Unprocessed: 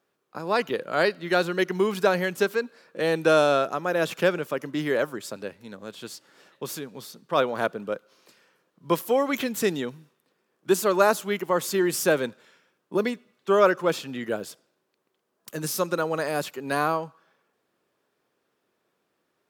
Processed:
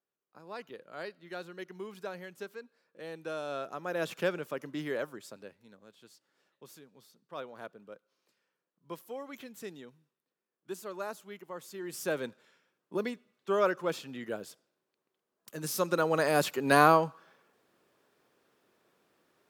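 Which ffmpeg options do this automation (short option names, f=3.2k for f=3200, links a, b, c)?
-af "volume=14dB,afade=t=in:st=3.42:d=0.58:silence=0.298538,afade=t=out:st=4.69:d=1.25:silence=0.298538,afade=t=in:st=11.79:d=0.48:silence=0.298538,afade=t=in:st=15.55:d=1.2:silence=0.251189"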